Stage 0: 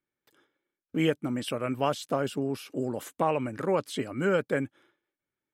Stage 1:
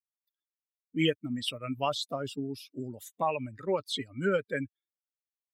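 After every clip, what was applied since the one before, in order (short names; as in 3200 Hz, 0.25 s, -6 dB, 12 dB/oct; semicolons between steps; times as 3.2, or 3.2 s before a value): per-bin expansion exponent 2; bell 3700 Hz +11.5 dB 0.79 oct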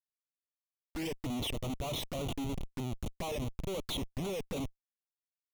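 Schmitt trigger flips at -38 dBFS; envelope flanger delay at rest 6.5 ms, full sweep at -33 dBFS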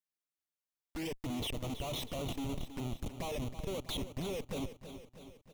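feedback echo 0.322 s, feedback 59%, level -11.5 dB; gain -2 dB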